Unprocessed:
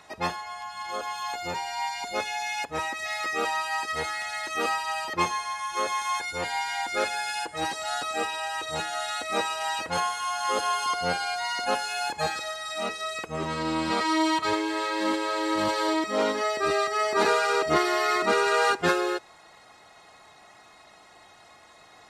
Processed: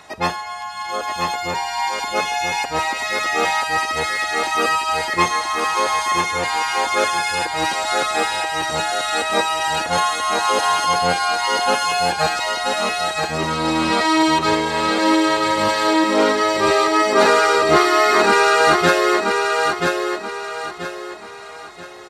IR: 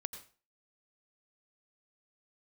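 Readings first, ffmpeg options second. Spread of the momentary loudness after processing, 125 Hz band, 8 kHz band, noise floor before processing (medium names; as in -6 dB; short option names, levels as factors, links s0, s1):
10 LU, +9.5 dB, +9.5 dB, -53 dBFS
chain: -af "aecho=1:1:982|1964|2946|3928:0.631|0.221|0.0773|0.0271,volume=2.51"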